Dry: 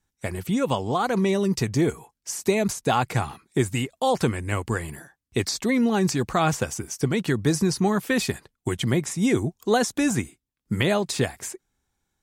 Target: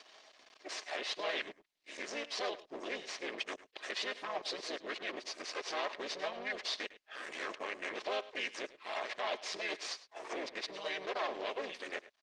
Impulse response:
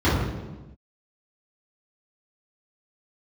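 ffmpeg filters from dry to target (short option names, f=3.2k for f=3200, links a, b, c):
-filter_complex "[0:a]areverse,aecho=1:1:3.8:0.52,acompressor=threshold=-23dB:ratio=3,alimiter=level_in=0.5dB:limit=-24dB:level=0:latency=1:release=158,volume=-0.5dB,acompressor=mode=upward:threshold=-35dB:ratio=2.5,aeval=exprs='max(val(0),0)':c=same,asplit=2[a][b];[b]asetrate=35002,aresample=44100,atempo=1.25992,volume=0dB[c];[a][c]amix=inputs=2:normalize=0,asoftclip=type=hard:threshold=-23.5dB,highpass=f=470:w=0.5412,highpass=f=470:w=1.3066,equalizer=f=500:t=q:w=4:g=-6,equalizer=f=840:t=q:w=4:g=-9,equalizer=f=1.4k:t=q:w=4:g=-10,lowpass=f=4.9k:w=0.5412,lowpass=f=4.9k:w=1.3066,aecho=1:1:104:0.15,volume=5.5dB" -ar 48000 -c:a libopus -b:a 32k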